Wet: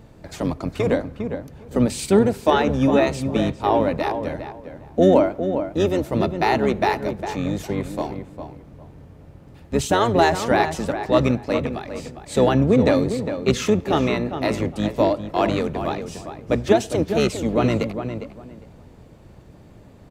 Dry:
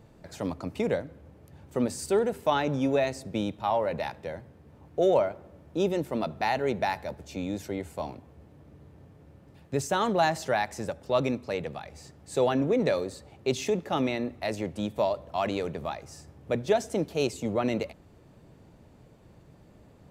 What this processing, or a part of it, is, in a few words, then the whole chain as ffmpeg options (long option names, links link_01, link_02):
octave pedal: -filter_complex "[0:a]asettb=1/sr,asplit=3[link_01][link_02][link_03];[link_01]atrim=end=14.404[link_04];[link_02]atrim=start=14.4:end=15.26,asetpts=PTS-STARTPTS,afade=type=in:duration=0.004:curve=qsin,afade=type=out:start_time=0.856:duration=0.004:curve=qsin,highpass=frequency=83:width=0.5412,highpass=frequency=83:width=1.3066[link_05];[link_03]atrim=start=15.256[link_06];[link_04][link_05]acrossfade=duration=0.004:curve1=hsin:curve2=qsin[link_07];[link_07][link_06]acrossfade=duration=0.004:curve1=qsin:curve2=hsin,asplit=2[link_08][link_09];[link_09]adelay=405,lowpass=frequency=2400:poles=1,volume=-8.5dB,asplit=2[link_10][link_11];[link_11]adelay=405,lowpass=frequency=2400:poles=1,volume=0.21,asplit=2[link_12][link_13];[link_13]adelay=405,lowpass=frequency=2400:poles=1,volume=0.21[link_14];[link_08][link_10][link_12][link_14]amix=inputs=4:normalize=0,asplit=2[link_15][link_16];[link_16]asetrate=22050,aresample=44100,atempo=2,volume=-4dB[link_17];[link_15][link_17]amix=inputs=2:normalize=0,volume=6.5dB"